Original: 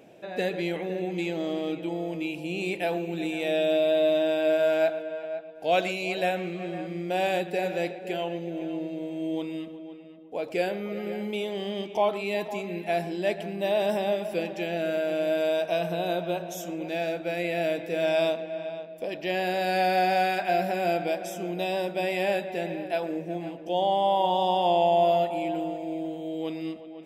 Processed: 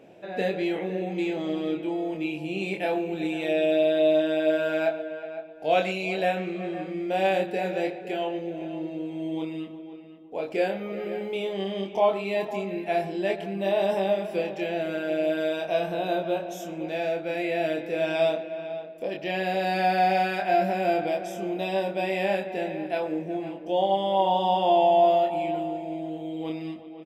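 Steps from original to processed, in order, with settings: high shelf 5200 Hz -9 dB; doubler 26 ms -3.5 dB

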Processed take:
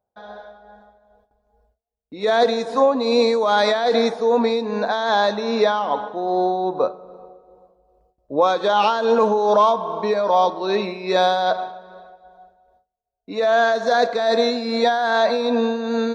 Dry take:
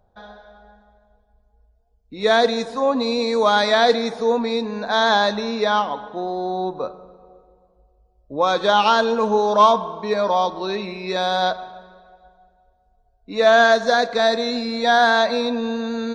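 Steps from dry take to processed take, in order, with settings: gate with hold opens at -51 dBFS; HPF 130 Hz 6 dB/oct; bell 570 Hz +5.5 dB 2.2 oct; limiter -9.5 dBFS, peak gain reduction 10.5 dB; tremolo 2.5 Hz, depth 49%; gain +2.5 dB

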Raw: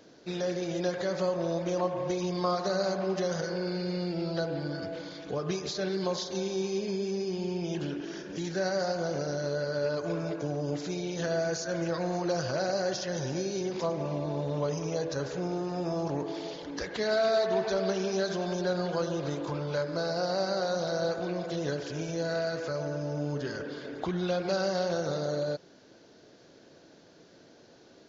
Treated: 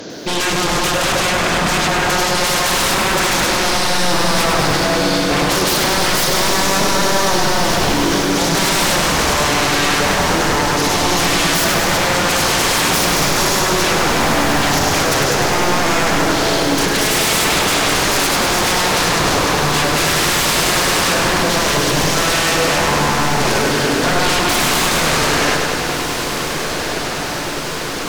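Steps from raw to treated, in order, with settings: HPF 47 Hz; high shelf 3500 Hz +4.5 dB; sine folder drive 20 dB, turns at -15.5 dBFS; diffused feedback echo 1.564 s, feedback 74%, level -8 dB; lo-fi delay 0.101 s, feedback 80%, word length 7-bit, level -6 dB

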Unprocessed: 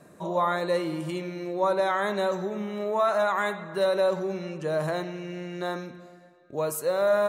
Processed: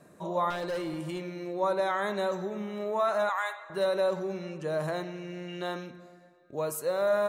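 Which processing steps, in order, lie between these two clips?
0.5–1.34 hard clip -26 dBFS, distortion -20 dB; 3.29–3.7 HPF 680 Hz 24 dB/oct; 5.48–5.91 bell 3000 Hz +12 dB 0.3 oct; gain -3.5 dB

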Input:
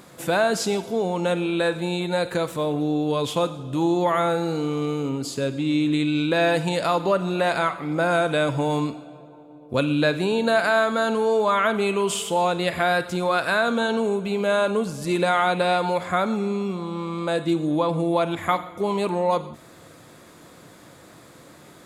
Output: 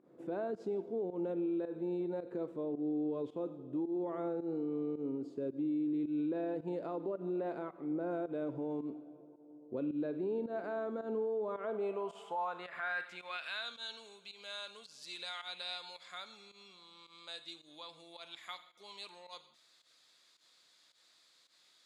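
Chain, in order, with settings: band-pass sweep 350 Hz -> 4300 Hz, 11.44–13.83; limiter -23 dBFS, peak gain reduction 8 dB; pump 109 bpm, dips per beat 1, -15 dB, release 0.108 s; gain -6.5 dB

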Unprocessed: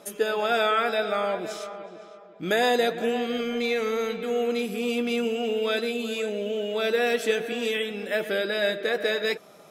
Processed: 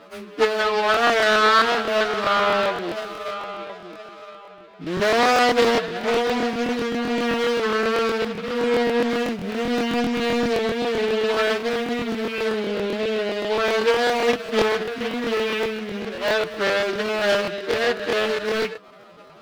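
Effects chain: median filter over 25 samples; band shelf 2300 Hz +9.5 dB 2.6 oct; time stretch by phase-locked vocoder 2×; crackling interface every 0.13 s, samples 1024, repeat, from 0.92; Doppler distortion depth 0.51 ms; gain +5 dB

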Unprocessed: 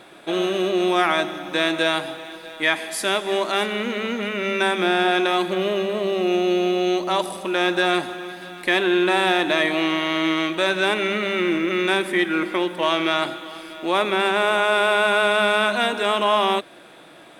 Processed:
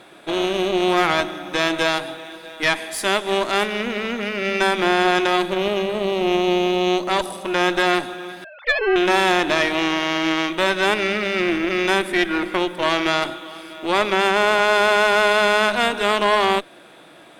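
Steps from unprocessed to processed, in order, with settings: 8.44–8.96 sine-wave speech; added harmonics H 4 -13 dB, 6 -43 dB, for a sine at -5.5 dBFS

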